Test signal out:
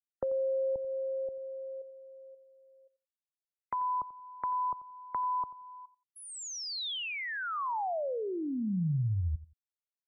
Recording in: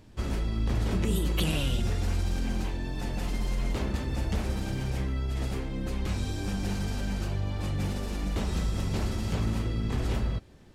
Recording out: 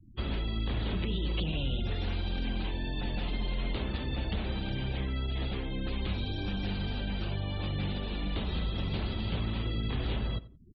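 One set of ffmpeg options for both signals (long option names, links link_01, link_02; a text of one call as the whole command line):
ffmpeg -i in.wav -filter_complex "[0:a]lowpass=frequency=3500:width_type=q:width=2.9,acrossover=split=170|810[link_01][link_02][link_03];[link_01]acompressor=threshold=-29dB:ratio=4[link_04];[link_02]acompressor=threshold=-36dB:ratio=4[link_05];[link_03]acompressor=threshold=-39dB:ratio=4[link_06];[link_04][link_05][link_06]amix=inputs=3:normalize=0,afftfilt=real='re*gte(hypot(re,im),0.00708)':imag='im*gte(hypot(re,im),0.00708)':win_size=1024:overlap=0.75,asplit=2[link_07][link_08];[link_08]adelay=88,lowpass=frequency=2000:poles=1,volume=-16.5dB,asplit=2[link_09][link_10];[link_10]adelay=88,lowpass=frequency=2000:poles=1,volume=0.21[link_11];[link_07][link_09][link_11]amix=inputs=3:normalize=0,volume=-1dB" out.wav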